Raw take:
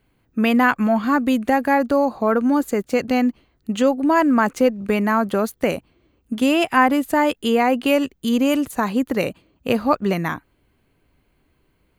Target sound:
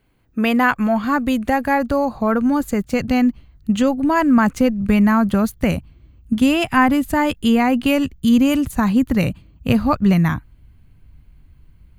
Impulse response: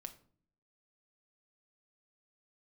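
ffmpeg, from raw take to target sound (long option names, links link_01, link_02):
-af "asubboost=boost=10.5:cutoff=130,volume=1dB"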